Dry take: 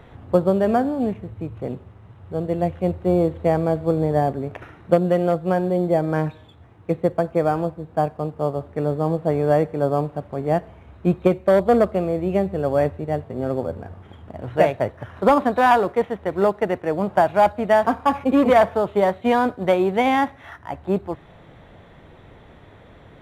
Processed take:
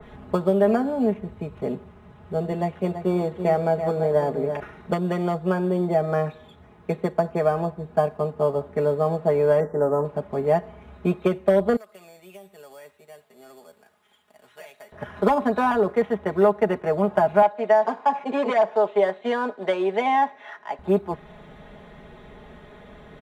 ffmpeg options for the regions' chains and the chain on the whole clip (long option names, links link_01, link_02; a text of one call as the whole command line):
ffmpeg -i in.wav -filter_complex "[0:a]asettb=1/sr,asplit=3[link_01][link_02][link_03];[link_01]atrim=end=2.514[link_04];[link_02]atrim=start=2.51:end=4.6,asetpts=PTS-STARTPTS,afade=type=in:duration=0.004:curve=qsin,afade=type=out:start_time=2.086:duration=0.004:curve=qsin,highpass=frequency=140:poles=1,aecho=1:1:332:0.299,atrim=end_sample=92169[link_05];[link_03]atrim=start=4.596[link_06];[link_04][link_05]acrossfade=duration=0.004:curve1=hsin:curve2=qsin[link_07];[link_07][link_06]acrossfade=duration=0.004:curve1=qsin:curve2=hsin,asettb=1/sr,asplit=3[link_08][link_09][link_10];[link_08]atrim=end=9.604[link_11];[link_09]atrim=start=9.6:end=10.05,asetpts=PTS-STARTPTS,afade=type=in:duration=0.004:curve=qsin,afade=type=out:start_time=0.446:duration=0.004:curve=qsin,asuperstop=centerf=3300:order=20:qfactor=0.93,asplit=2[link_12][link_13];[link_13]adelay=18,volume=-12dB[link_14];[link_12][link_14]amix=inputs=2:normalize=0,atrim=end_sample=19845[link_15];[link_10]atrim=start=10.046[link_16];[link_11][link_15]acrossfade=duration=0.004:curve1=hsin:curve2=qsin[link_17];[link_17][link_16]acrossfade=duration=0.004:curve1=qsin:curve2=hsin,asettb=1/sr,asplit=3[link_18][link_19][link_20];[link_18]atrim=end=11.764[link_21];[link_19]atrim=start=11.76:end=14.92,asetpts=PTS-STARTPTS,afade=type=in:duration=0.004:curve=qsin,afade=type=out:start_time=3.156:duration=0.004:curve=qsin,aderivative,acompressor=threshold=-42dB:ratio=4:attack=3.2:release=140:knee=1:detection=peak[link_22];[link_20]atrim=start=14.916[link_23];[link_21][link_22]acrossfade=duration=0.004:curve1=hsin:curve2=qsin[link_24];[link_24][link_23]acrossfade=duration=0.004:curve1=qsin:curve2=hsin,asettb=1/sr,asplit=3[link_25][link_26][link_27];[link_25]atrim=end=17.424[link_28];[link_26]atrim=start=17.42:end=20.79,asetpts=PTS-STARTPTS,afade=type=in:duration=0.004:curve=qsin,afade=type=out:start_time=3.366:duration=0.004:curve=qsin,highpass=480,lowpass=6600,equalizer=frequency=1300:width=4.2:gain=-6[link_29];[link_27]atrim=start=20.786[link_30];[link_28][link_29]acrossfade=duration=0.004:curve1=hsin:curve2=qsin[link_31];[link_31][link_30]acrossfade=duration=0.004:curve1=qsin:curve2=hsin,acrossover=split=260|1000|5900[link_32][link_33][link_34][link_35];[link_32]acompressor=threshold=-33dB:ratio=4[link_36];[link_33]acompressor=threshold=-20dB:ratio=4[link_37];[link_34]acompressor=threshold=-31dB:ratio=4[link_38];[link_35]acompressor=threshold=-55dB:ratio=4[link_39];[link_36][link_37][link_38][link_39]amix=inputs=4:normalize=0,aecho=1:1:4.8:0.81,adynamicequalizer=threshold=0.01:dfrequency=2200:dqfactor=0.7:tfrequency=2200:tqfactor=0.7:attack=5:release=100:ratio=0.375:range=2:mode=cutabove:tftype=highshelf" out.wav